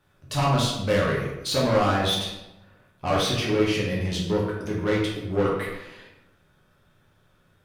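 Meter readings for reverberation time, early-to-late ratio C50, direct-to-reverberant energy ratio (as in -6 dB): 0.95 s, 2.0 dB, -5.0 dB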